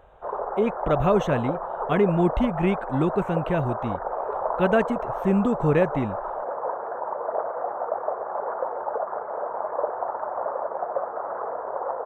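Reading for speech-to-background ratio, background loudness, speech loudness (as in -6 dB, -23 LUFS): 5.5 dB, -30.0 LUFS, -24.5 LUFS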